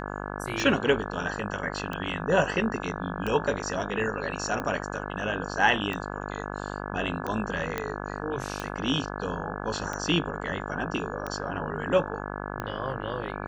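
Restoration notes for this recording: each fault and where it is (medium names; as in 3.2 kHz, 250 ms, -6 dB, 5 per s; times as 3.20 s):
buzz 50 Hz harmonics 34 -35 dBFS
tick 45 rpm
7.78 s: pop -14 dBFS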